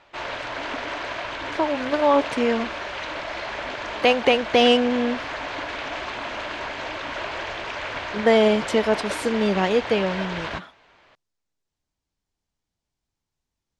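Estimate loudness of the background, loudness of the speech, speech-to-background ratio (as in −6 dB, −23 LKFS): −30.5 LKFS, −21.5 LKFS, 9.0 dB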